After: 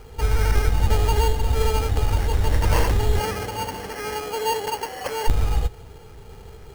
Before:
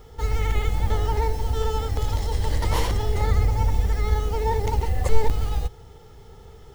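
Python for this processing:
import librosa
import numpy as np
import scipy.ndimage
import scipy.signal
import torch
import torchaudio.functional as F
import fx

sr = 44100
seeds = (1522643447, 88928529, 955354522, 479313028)

y = fx.highpass(x, sr, hz=fx.line((3.19, 190.0), (5.27, 590.0)), slope=12, at=(3.19, 5.27), fade=0.02)
y = fx.sample_hold(y, sr, seeds[0], rate_hz=3700.0, jitter_pct=0)
y = y * librosa.db_to_amplitude(3.5)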